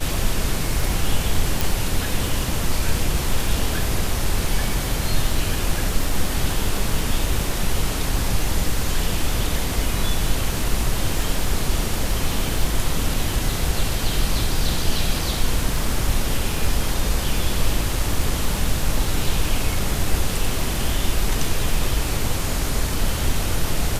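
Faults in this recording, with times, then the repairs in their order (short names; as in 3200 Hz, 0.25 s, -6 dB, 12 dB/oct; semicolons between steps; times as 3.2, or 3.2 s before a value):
crackle 25/s -26 dBFS
1.61 pop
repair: de-click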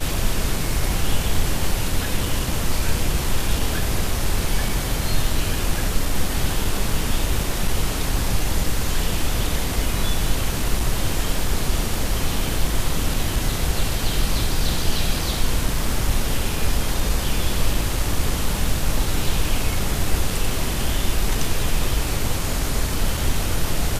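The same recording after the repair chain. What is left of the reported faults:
none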